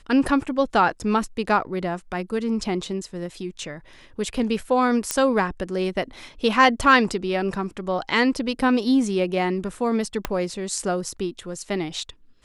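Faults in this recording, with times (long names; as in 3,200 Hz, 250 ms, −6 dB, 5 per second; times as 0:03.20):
0:05.11: click −5 dBFS
0:10.25: click −9 dBFS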